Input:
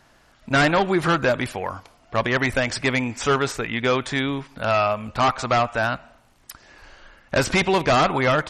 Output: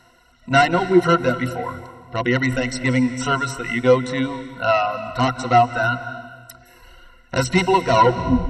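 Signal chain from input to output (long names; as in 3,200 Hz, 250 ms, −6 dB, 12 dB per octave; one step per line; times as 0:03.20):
turntable brake at the end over 0.60 s
reverb reduction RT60 1.5 s
EQ curve with evenly spaced ripples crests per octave 2, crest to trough 16 dB
harmonic and percussive parts rebalanced harmonic +7 dB
on a send: convolution reverb RT60 1.5 s, pre-delay 157 ms, DRR 11.5 dB
on the sum: level −4.5 dB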